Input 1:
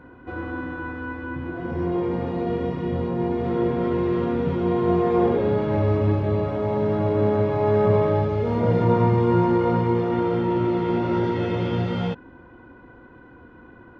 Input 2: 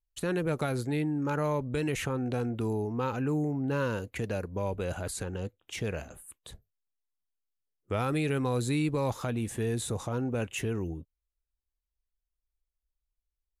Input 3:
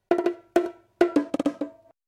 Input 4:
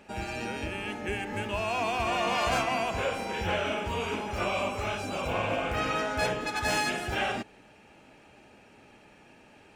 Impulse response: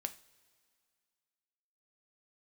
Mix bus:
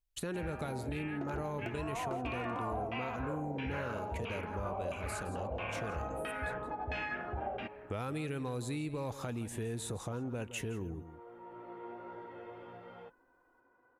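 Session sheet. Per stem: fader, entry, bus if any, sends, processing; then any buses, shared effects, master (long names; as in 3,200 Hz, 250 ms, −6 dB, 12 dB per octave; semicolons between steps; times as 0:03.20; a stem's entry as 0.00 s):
−13.5 dB, 0.95 s, no send, no echo send, three-way crossover with the lows and the highs turned down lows −19 dB, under 420 Hz, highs −16 dB, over 2,100 Hz; flanger 1.6 Hz, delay 6.5 ms, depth 2.2 ms, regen −51%; automatic ducking −12 dB, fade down 0.25 s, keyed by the second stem
0.0 dB, 0.00 s, no send, echo send −15 dB, no processing
−14.0 dB, 1.10 s, no send, no echo send, no processing
−3.0 dB, 0.25 s, no send, no echo send, parametric band 68 Hz +10 dB 0.77 octaves; auto-filter low-pass saw down 1.5 Hz 570–3,000 Hz; high-shelf EQ 7,600 Hz −11.5 dB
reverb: not used
echo: single-tap delay 167 ms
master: downward compressor 3 to 1, threshold −38 dBFS, peak gain reduction 12.5 dB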